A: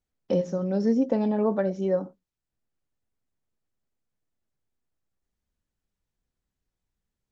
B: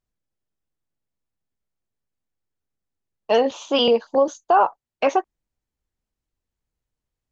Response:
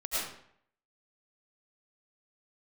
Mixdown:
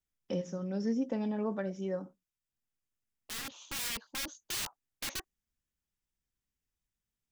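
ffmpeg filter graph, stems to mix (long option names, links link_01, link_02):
-filter_complex "[0:a]lowshelf=frequency=180:gain=-8.5,bandreject=frequency=4200:width=5.4,volume=-1.5dB,asplit=2[link_01][link_02];[1:a]aeval=exprs='(mod(8.41*val(0)+1,2)-1)/8.41':channel_layout=same,volume=-11dB[link_03];[link_02]apad=whole_len=322374[link_04];[link_03][link_04]sidechaincompress=threshold=-41dB:ratio=8:attack=8.8:release=1390[link_05];[link_01][link_05]amix=inputs=2:normalize=0,equalizer=frequency=610:width_type=o:width=2.3:gain=-9.5"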